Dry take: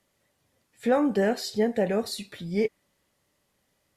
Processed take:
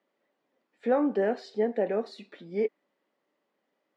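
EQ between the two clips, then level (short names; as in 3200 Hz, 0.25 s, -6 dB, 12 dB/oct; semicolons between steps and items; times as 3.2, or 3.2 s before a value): HPF 250 Hz 24 dB/oct; tape spacing loss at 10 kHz 31 dB; 0.0 dB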